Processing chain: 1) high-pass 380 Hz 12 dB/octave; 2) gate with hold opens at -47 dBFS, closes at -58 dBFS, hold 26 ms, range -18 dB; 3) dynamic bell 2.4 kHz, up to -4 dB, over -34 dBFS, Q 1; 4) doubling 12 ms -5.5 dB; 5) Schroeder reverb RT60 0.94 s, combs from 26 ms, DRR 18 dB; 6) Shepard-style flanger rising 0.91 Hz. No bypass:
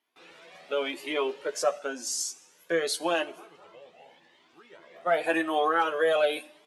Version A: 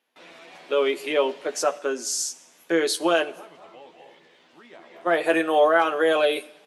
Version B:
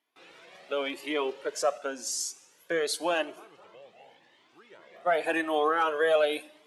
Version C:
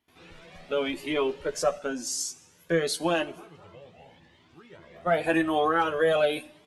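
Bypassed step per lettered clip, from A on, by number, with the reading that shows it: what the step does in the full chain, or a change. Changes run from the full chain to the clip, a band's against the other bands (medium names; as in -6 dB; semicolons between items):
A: 6, 250 Hz band +2.0 dB; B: 4, 125 Hz band -2.0 dB; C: 1, 125 Hz band +15.0 dB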